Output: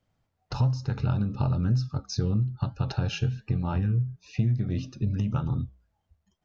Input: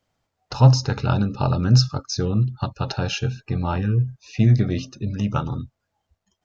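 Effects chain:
bass and treble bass +8 dB, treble −4 dB
downward compressor 6 to 1, threshold −18 dBFS, peak gain reduction 16.5 dB
flanger 1.1 Hz, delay 5.3 ms, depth 4 ms, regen −89%

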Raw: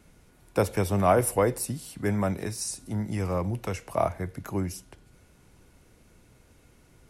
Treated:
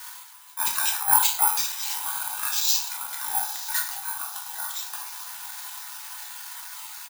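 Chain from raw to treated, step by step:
time-frequency cells dropped at random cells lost 23%
Butterworth high-pass 1,200 Hz 72 dB per octave
reversed playback
upward compression, threshold −44 dBFS
reversed playback
volume swells 112 ms
sine wavefolder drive 3 dB, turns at −20.5 dBFS
on a send: feedback delay with all-pass diffusion 931 ms, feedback 56%, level −12 dB
on the sum: pitch shifter −6.5 semitones
rectangular room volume 120 cubic metres, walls mixed, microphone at 0.99 metres
bad sample-rate conversion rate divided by 4×, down none, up zero stuff
level +1 dB

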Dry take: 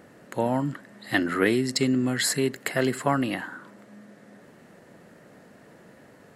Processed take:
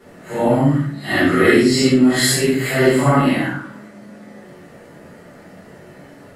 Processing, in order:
random phases in long frames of 200 ms
rectangular room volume 54 cubic metres, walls mixed, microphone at 1.7 metres
level +1 dB

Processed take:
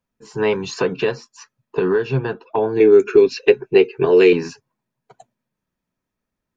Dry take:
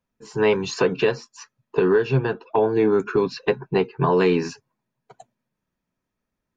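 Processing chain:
0:02.80–0:04.33: graphic EQ with 15 bands 160 Hz −10 dB, 400 Hz +11 dB, 1,000 Hz −9 dB, 2,500 Hz +10 dB, 6,300 Hz +8 dB

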